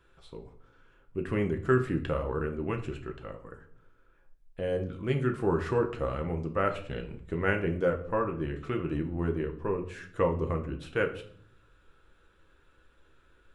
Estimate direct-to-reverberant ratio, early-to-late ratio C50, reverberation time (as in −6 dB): 3.5 dB, 12.0 dB, 0.60 s